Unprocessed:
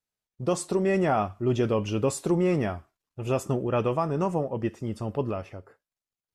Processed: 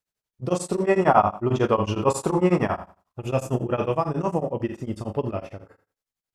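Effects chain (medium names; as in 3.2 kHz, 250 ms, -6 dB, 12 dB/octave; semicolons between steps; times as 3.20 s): 0.83–3.20 s: peaking EQ 1 kHz +11.5 dB 1 oct; flutter echo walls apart 6.7 m, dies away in 0.37 s; tremolo of two beating tones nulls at 11 Hz; trim +3.5 dB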